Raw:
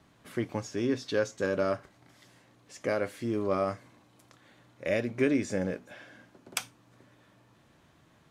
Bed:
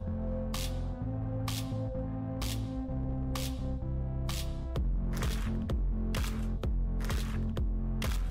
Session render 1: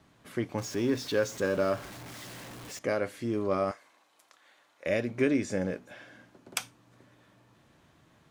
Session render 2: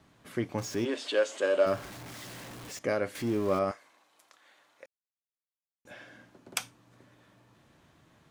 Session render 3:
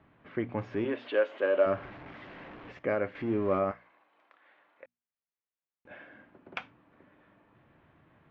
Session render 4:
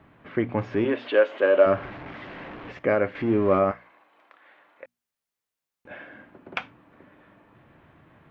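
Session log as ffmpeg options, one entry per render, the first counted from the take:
-filter_complex "[0:a]asettb=1/sr,asplit=3[a][b][c];[a]atrim=end=0.584[d];[b]atrim=start=0.58:end=2.79,asetpts=PTS-STARTPTS,afade=t=in:d=0.004:c=qsin,afade=t=out:st=2.206:d=0.004:c=qsin,aeval=exprs='val(0)+0.5*0.01*sgn(val(0))':c=same[e];[c]atrim=start=2.786[f];[d][e]acrossfade=d=0.004:c1=hsin:c2=qsin[g];[g][f]acrossfade=d=0.004:c1=qsin:c2=hsin,asettb=1/sr,asplit=3[h][i][j];[h]atrim=end=3.714[k];[i]atrim=start=3.71:end=4.86,asetpts=PTS-STARTPTS,afade=t=in:d=0.004:c=qsin,afade=t=out:st=1.146:d=0.004:c=qsin,highpass=670[l];[j]atrim=start=4.856[m];[k][l]acrossfade=d=0.004:c1=hsin:c2=qsin[n];[n][m]acrossfade=d=0.004:c1=qsin:c2=hsin"
-filter_complex "[0:a]asplit=3[a][b][c];[a]afade=t=out:st=0.84:d=0.02[d];[b]highpass=f=320:w=0.5412,highpass=f=320:w=1.3066,equalizer=f=430:t=q:w=4:g=-4,equalizer=f=610:t=q:w=4:g=7,equalizer=f=3k:t=q:w=4:g=9,equalizer=f=5.7k:t=q:w=4:g=-8,equalizer=f=8.4k:t=q:w=4:g=4,lowpass=f=8.8k:w=0.5412,lowpass=f=8.8k:w=1.3066,afade=t=in:st=0.84:d=0.02,afade=t=out:st=1.65:d=0.02[e];[c]afade=t=in:st=1.65:d=0.02[f];[d][e][f]amix=inputs=3:normalize=0,asettb=1/sr,asplit=3[g][h][i];[g]atrim=end=3.154[j];[h]atrim=start=3.15:end=3.59,asetpts=PTS-STARTPTS,afade=t=in:d=0.004:c=qsin,afade=t=out:st=0.436:d=0.004:c=qsin,aeval=exprs='val(0)+0.5*0.0119*sgn(val(0))':c=same[k];[i]atrim=start=3.586[l];[j][k]acrossfade=d=0.004:c1=hsin:c2=qsin[m];[m][l]acrossfade=d=0.004:c1=qsin:c2=hsin,asplit=3[n][o][p];[n]atrim=end=4.86,asetpts=PTS-STARTPTS,afade=t=out:st=4.856:d=0.004:c=hsin[q];[o]atrim=start=4.86:end=5.85,asetpts=PTS-STARTPTS,volume=0[r];[p]atrim=start=5.85,asetpts=PTS-STARTPTS,afade=t=in:d=0.004:c=hsin[s];[q][r][s]concat=n=3:v=0:a=1"
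-af "lowpass=f=2.6k:w=0.5412,lowpass=f=2.6k:w=1.3066,bandreject=f=60:t=h:w=6,bandreject=f=120:t=h:w=6,bandreject=f=180:t=h:w=6,bandreject=f=240:t=h:w=6"
-af "volume=7.5dB"

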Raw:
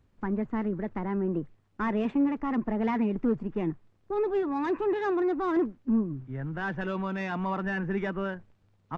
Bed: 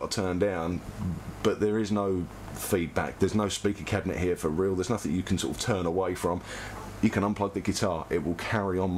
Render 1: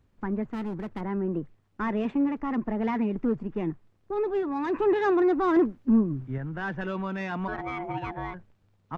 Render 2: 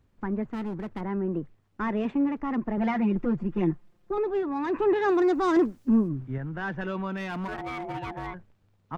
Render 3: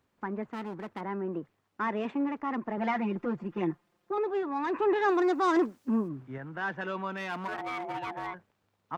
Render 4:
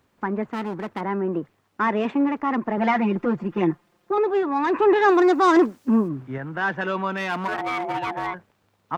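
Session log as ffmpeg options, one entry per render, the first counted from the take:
-filter_complex "[0:a]asettb=1/sr,asplit=3[a][b][c];[a]atrim=end=0.504[d];[b]atrim=start=0.5:end=1.01,asetpts=PTS-STARTPTS,afade=t=in:d=0.004:c=qsin,afade=t=out:st=0.506:d=0.004:c=qsin,asoftclip=type=hard:threshold=-29.5dB[e];[c]atrim=start=1.006[f];[d][e]acrossfade=d=0.004:c1=hsin:c2=qsin[g];[g][f]acrossfade=d=0.004:c1=qsin:c2=hsin,asplit=3[h][i][j];[h]afade=t=out:st=7.47:d=0.02[k];[i]aeval=exprs='val(0)*sin(2*PI*530*n/s)':c=same,afade=t=in:st=7.47:d=0.02,afade=t=out:st=8.33:d=0.02[l];[j]afade=t=in:st=8.33:d=0.02[m];[k][l][m]amix=inputs=3:normalize=0,asplit=3[n][o][p];[n]atrim=end=4.742[q];[o]atrim=start=4.738:end=6.382,asetpts=PTS-STARTPTS,volume=4.5dB[r];[p]atrim=start=6.378[s];[q][r]acrossfade=d=0.004:c1=hsin:c2=hsin[t];[t][s]acrossfade=d=0.004:c1=hsin:c2=hsin"
-filter_complex "[0:a]asettb=1/sr,asplit=3[a][b][c];[a]atrim=end=2.774[d];[b]atrim=start=2.77:end=4.18,asetpts=PTS-STARTPTS,afade=t=in:d=0.004:c=qsin,afade=t=out:st=1.406:d=0.004:c=qsin,aecho=1:1:5.7:0.97,atrim=end_sample=62181[e];[c]atrim=start=4.176[f];[d][e]acrossfade=d=0.004:c1=hsin:c2=qsin[g];[g][f]acrossfade=d=0.004:c1=qsin:c2=hsin,asplit=3[h][i][j];[h]afade=t=out:st=5.08:d=0.02[k];[i]bass=f=250:g=-1,treble=f=4k:g=15,afade=t=in:st=5.08:d=0.02,afade=t=out:st=6.07:d=0.02[l];[j]afade=t=in:st=6.07:d=0.02[m];[k][l][m]amix=inputs=3:normalize=0,asettb=1/sr,asplit=3[n][o][p];[n]atrim=end=7.174[q];[o]atrim=start=7.17:end=8.27,asetpts=PTS-STARTPTS,afade=t=in:d=0.004:c=qsin,afade=t=out:st=1.096:d=0.004:c=qsin,asoftclip=type=hard:threshold=-28.5dB[r];[p]atrim=start=8.266[s];[q][r]acrossfade=d=0.004:c1=hsin:c2=qsin[t];[t][s]acrossfade=d=0.004:c1=qsin:c2=hsin"
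-af "highpass=f=440:p=1,equalizer=f=1k:w=1.5:g=2"
-af "volume=9dB"

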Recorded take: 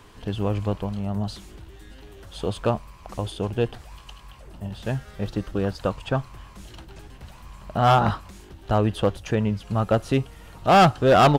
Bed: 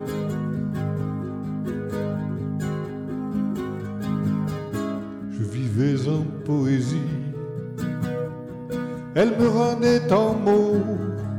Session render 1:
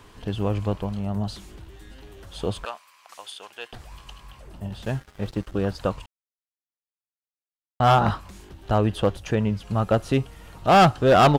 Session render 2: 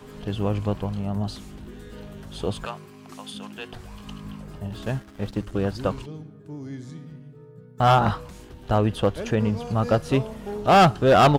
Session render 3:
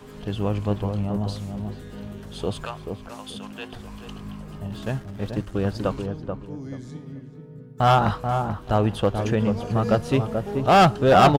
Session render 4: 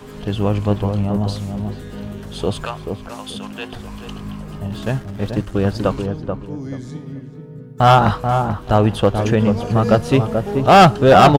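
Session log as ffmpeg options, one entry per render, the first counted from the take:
-filter_complex "[0:a]asettb=1/sr,asplit=3[a][b][c];[a]atrim=end=2.654[d];[b]atrim=start=2.65:end=3.73,asetpts=PTS-STARTPTS,afade=t=in:d=0.004:c=qsin,afade=t=out:st=1.076:d=0.004:c=qsin,highpass=1.3k[e];[c]atrim=start=3.726[f];[d][e]acrossfade=d=0.004:c1=hsin:c2=qsin[g];[g][f]acrossfade=d=0.004:c1=qsin:c2=hsin,asettb=1/sr,asplit=3[h][i][j];[h]atrim=end=4.854[k];[i]atrim=start=4.85:end=5.54,asetpts=PTS-STARTPTS,afade=t=in:d=0.004:c=qsin,afade=t=out:st=0.686:d=0.004:c=qsin,aeval=exprs='sgn(val(0))*max(abs(val(0))-0.00668,0)':c=same[l];[j]atrim=start=5.536[m];[k][l]acrossfade=d=0.004:c1=hsin:c2=qsin[n];[n][m]acrossfade=d=0.004:c1=qsin:c2=hsin,asplit=3[o][p][q];[o]atrim=end=6.06,asetpts=PTS-STARTPTS,afade=t=out:st=6.056:d=0.004:c=hsin[r];[p]atrim=start=6.06:end=7.8,asetpts=PTS-STARTPTS,volume=0[s];[q]atrim=start=7.8,asetpts=PTS-STARTPTS,afade=t=in:d=0.004:c=hsin[t];[r][s][t]concat=n=3:v=0:a=1"
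-filter_complex "[1:a]volume=-15dB[a];[0:a][a]amix=inputs=2:normalize=0"
-filter_complex "[0:a]asplit=2[a][b];[b]adelay=434,lowpass=f=1k:p=1,volume=-5dB,asplit=2[c][d];[d]adelay=434,lowpass=f=1k:p=1,volume=0.27,asplit=2[e][f];[f]adelay=434,lowpass=f=1k:p=1,volume=0.27,asplit=2[g][h];[h]adelay=434,lowpass=f=1k:p=1,volume=0.27[i];[a][c][e][g][i]amix=inputs=5:normalize=0"
-af "volume=6.5dB,alimiter=limit=-2dB:level=0:latency=1"

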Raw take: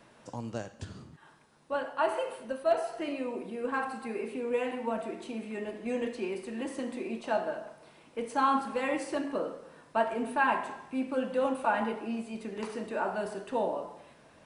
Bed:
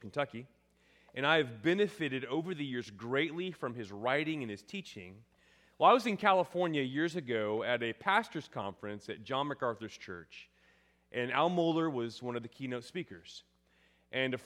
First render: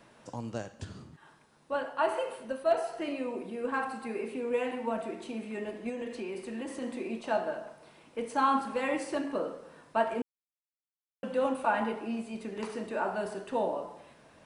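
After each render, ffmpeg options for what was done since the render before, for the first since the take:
-filter_complex "[0:a]asettb=1/sr,asplit=3[a][b][c];[a]atrim=end=5.894[d];[b]atrim=start=5.89:end=6.82,asetpts=PTS-STARTPTS,afade=t=in:d=0.004:c=qsin,afade=t=out:st=0.926:d=0.004:c=qsin,acompressor=threshold=-33dB:ratio=6:attack=3.2:release=140:knee=1:detection=peak[e];[c]atrim=start=6.816[f];[d][e]acrossfade=d=0.004:c1=hsin:c2=qsin[g];[g][f]acrossfade=d=0.004:c1=qsin:c2=hsin,asplit=3[h][i][j];[h]atrim=end=10.22,asetpts=PTS-STARTPTS,afade=t=out:st=10.216:d=0.004:c=hsin[k];[i]atrim=start=10.22:end=11.23,asetpts=PTS-STARTPTS,volume=0[l];[j]atrim=start=11.23,asetpts=PTS-STARTPTS,afade=t=in:d=0.004:c=hsin[m];[k][l][m]concat=n=3:v=0:a=1"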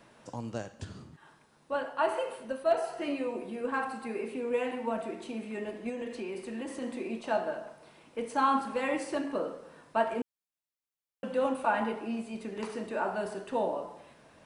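-filter_complex "[0:a]asettb=1/sr,asplit=3[a][b][c];[a]atrim=end=2.814[d];[b]atrim=start=2.81:end=3.61,asetpts=PTS-STARTPTS,afade=t=in:d=0.004:c=qsin,afade=t=out:st=0.796:d=0.004:c=qsin,asplit=2[e][f];[f]adelay=14,volume=-5.5dB[g];[e][g]amix=inputs=2:normalize=0,atrim=end_sample=35280[h];[c]atrim=start=3.606[i];[d][h]acrossfade=d=0.004:c1=hsin:c2=qsin[j];[j][i]acrossfade=d=0.004:c1=qsin:c2=hsin"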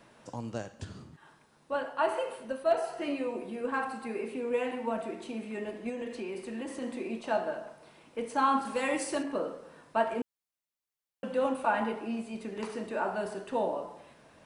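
-filter_complex "[0:a]asettb=1/sr,asplit=3[a][b][c];[a]atrim=end=8.654[d];[b]atrim=start=8.65:end=9.23,asetpts=PTS-STARTPTS,afade=t=in:d=0.004:c=qsin,afade=t=out:st=0.576:d=0.004:c=qsin,highshelf=f=5.2k:g=12[e];[c]atrim=start=9.226[f];[d][e]acrossfade=d=0.004:c1=hsin:c2=qsin[g];[g][f]acrossfade=d=0.004:c1=qsin:c2=hsin"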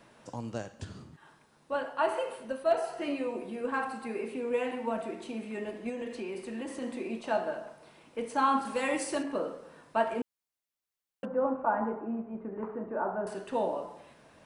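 -filter_complex "[0:a]asettb=1/sr,asplit=3[a][b][c];[a]atrim=end=11.254[d];[b]atrim=start=11.25:end=13.27,asetpts=PTS-STARTPTS,afade=t=in:d=0.004:c=qsin,afade=t=out:st=2.016:d=0.004:c=qsin,lowpass=f=1.4k:w=0.5412,lowpass=f=1.4k:w=1.3066[e];[c]atrim=start=13.266[f];[d][e]acrossfade=d=0.004:c1=hsin:c2=qsin[g];[g][f]acrossfade=d=0.004:c1=qsin:c2=hsin"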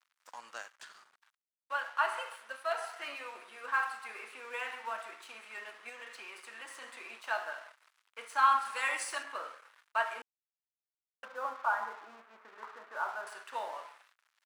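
-af "aeval=exprs='sgn(val(0))*max(abs(val(0))-0.00251,0)':c=same,highpass=f=1.3k:t=q:w=1.8"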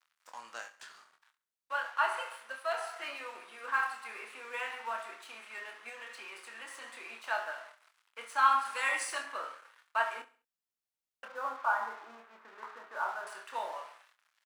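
-filter_complex "[0:a]asplit=2[a][b];[b]adelay=26,volume=-7dB[c];[a][c]amix=inputs=2:normalize=0,aecho=1:1:67|134|201:0.126|0.0504|0.0201"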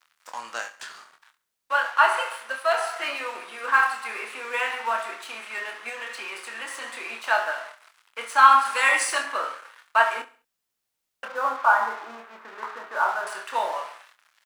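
-af "volume=11.5dB,alimiter=limit=-1dB:level=0:latency=1"

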